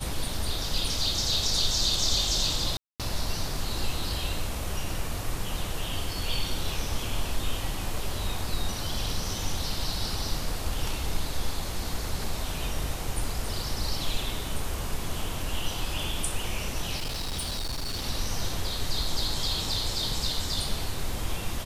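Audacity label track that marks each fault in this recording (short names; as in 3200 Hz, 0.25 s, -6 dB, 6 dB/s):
2.770000	3.000000	gap 0.227 s
16.980000	18.050000	clipped -27.5 dBFS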